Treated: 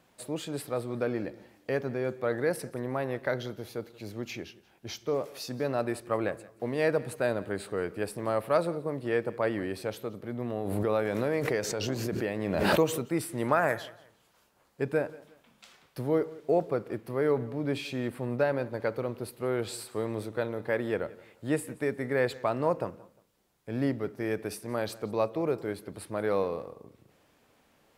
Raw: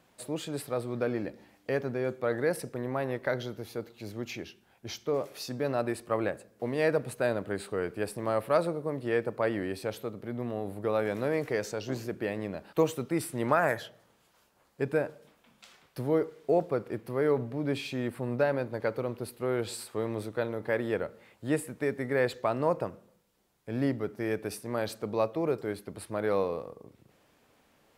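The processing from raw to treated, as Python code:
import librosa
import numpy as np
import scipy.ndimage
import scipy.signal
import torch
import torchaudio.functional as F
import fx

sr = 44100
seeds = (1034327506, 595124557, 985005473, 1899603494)

y = fx.echo_feedback(x, sr, ms=177, feedback_pct=29, wet_db=-21.0)
y = fx.pre_swell(y, sr, db_per_s=30.0, at=(10.41, 13.06))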